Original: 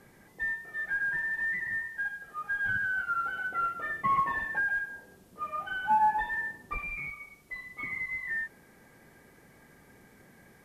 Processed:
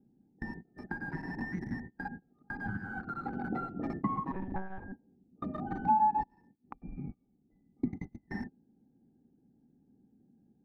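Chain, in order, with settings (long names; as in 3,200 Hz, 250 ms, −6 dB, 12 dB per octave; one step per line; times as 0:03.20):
adaptive Wiener filter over 41 samples
noise gate −49 dBFS, range −31 dB
tilt shelving filter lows +8 dB, about 640 Hz
downward compressor 4 to 1, threshold −50 dBFS, peak gain reduction 21 dB
0:06.23–0:06.82: gate with flip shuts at −53 dBFS, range −26 dB
hollow resonant body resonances 250/800 Hz, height 18 dB, ringing for 25 ms
0:04.32–0:04.92: one-pitch LPC vocoder at 8 kHz 190 Hz
level +6.5 dB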